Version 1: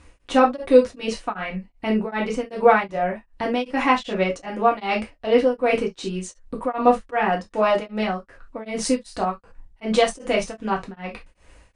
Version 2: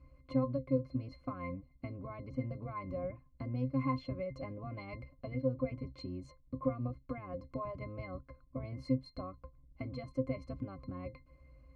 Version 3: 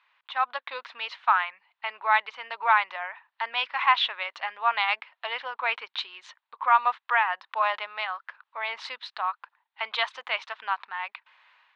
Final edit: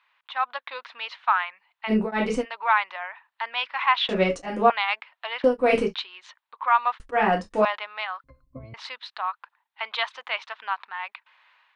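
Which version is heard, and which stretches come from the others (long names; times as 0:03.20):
3
0:01.90–0:02.44: punch in from 1, crossfade 0.06 s
0:04.09–0:04.70: punch in from 1
0:05.44–0:05.94: punch in from 1
0:07.00–0:07.65: punch in from 1
0:08.24–0:08.74: punch in from 2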